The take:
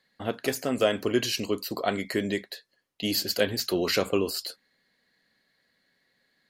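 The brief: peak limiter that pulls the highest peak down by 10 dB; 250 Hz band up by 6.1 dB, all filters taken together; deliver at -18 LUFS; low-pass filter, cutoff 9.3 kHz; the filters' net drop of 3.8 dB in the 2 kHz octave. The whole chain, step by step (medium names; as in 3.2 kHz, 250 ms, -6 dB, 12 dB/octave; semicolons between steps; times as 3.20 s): low-pass 9.3 kHz; peaking EQ 250 Hz +8 dB; peaking EQ 2 kHz -5 dB; trim +11 dB; peak limiter -7 dBFS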